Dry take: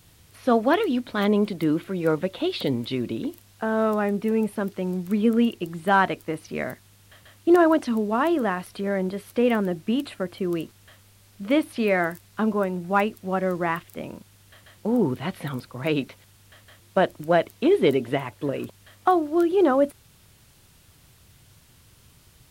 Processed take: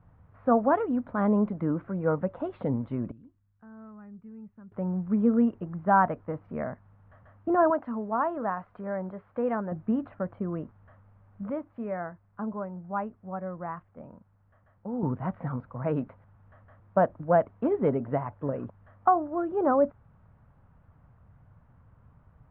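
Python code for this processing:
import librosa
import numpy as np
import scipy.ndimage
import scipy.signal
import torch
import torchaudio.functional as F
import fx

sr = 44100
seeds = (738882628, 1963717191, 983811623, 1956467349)

y = fx.tone_stack(x, sr, knobs='6-0-2', at=(3.11, 4.72))
y = fx.low_shelf(y, sr, hz=390.0, db=-9.0, at=(7.7, 9.72))
y = fx.edit(y, sr, fx.clip_gain(start_s=11.5, length_s=3.53, db=-8.0), tone=tone)
y = scipy.signal.sosfilt(scipy.signal.butter(4, 1300.0, 'lowpass', fs=sr, output='sos'), y)
y = fx.peak_eq(y, sr, hz=360.0, db=-11.0, octaves=0.6)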